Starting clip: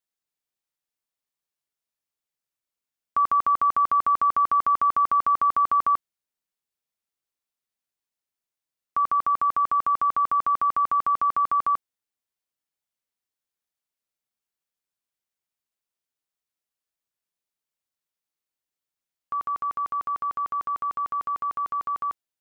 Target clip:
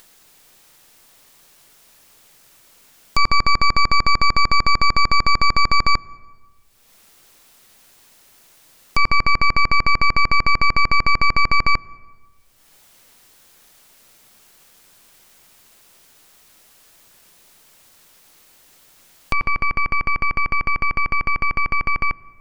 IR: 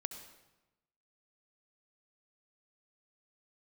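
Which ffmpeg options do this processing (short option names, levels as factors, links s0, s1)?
-filter_complex "[0:a]acompressor=mode=upward:threshold=0.0631:ratio=2.5,aeval=exprs='0.316*(cos(1*acos(clip(val(0)/0.316,-1,1)))-cos(1*PI/2))+0.141*(cos(8*acos(clip(val(0)/0.316,-1,1)))-cos(8*PI/2))':c=same,asplit=2[s0][s1];[1:a]atrim=start_sample=2205,asetrate=29547,aresample=44100,highshelf=f=2100:g=-11.5[s2];[s1][s2]afir=irnorm=-1:irlink=0,volume=0.224[s3];[s0][s3]amix=inputs=2:normalize=0"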